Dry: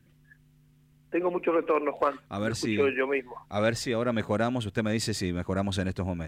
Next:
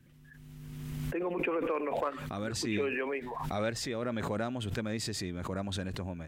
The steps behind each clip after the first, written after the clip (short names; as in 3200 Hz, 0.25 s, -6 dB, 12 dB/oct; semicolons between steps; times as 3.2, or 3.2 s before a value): backwards sustainer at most 26 dB/s; gain -8 dB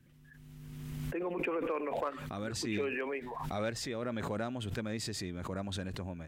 hard clip -23 dBFS, distortion -36 dB; gain -2.5 dB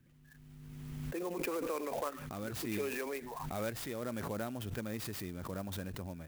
clock jitter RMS 0.045 ms; gain -2.5 dB